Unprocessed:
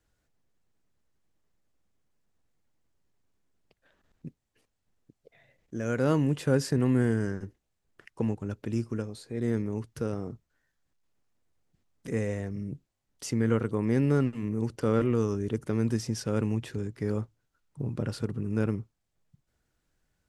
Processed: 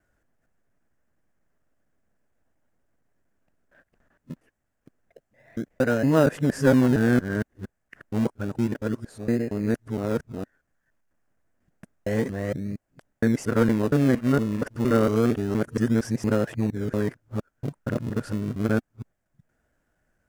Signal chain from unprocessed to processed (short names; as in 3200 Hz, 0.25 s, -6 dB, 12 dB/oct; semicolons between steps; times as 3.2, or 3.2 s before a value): local time reversal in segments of 0.232 s; fifteen-band EQ 250 Hz +5 dB, 630 Hz +9 dB, 1600 Hz +10 dB, 4000 Hz -10 dB; in parallel at -11.5 dB: decimation with a swept rate 38×, swing 100% 0.29 Hz